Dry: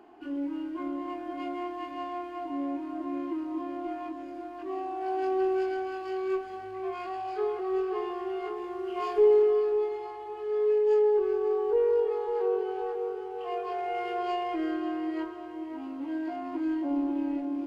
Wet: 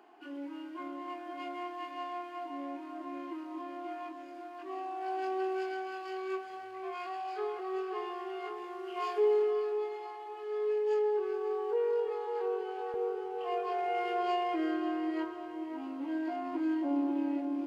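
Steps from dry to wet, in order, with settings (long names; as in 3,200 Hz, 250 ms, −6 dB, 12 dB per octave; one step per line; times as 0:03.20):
high-pass filter 800 Hz 6 dB per octave, from 0:12.94 230 Hz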